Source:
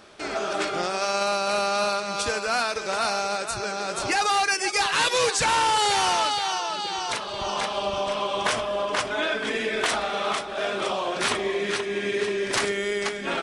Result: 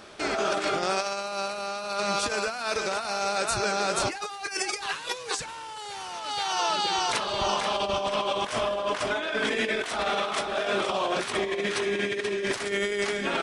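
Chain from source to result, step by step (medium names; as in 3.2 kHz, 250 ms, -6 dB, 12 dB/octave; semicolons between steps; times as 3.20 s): compressor with a negative ratio -28 dBFS, ratio -0.5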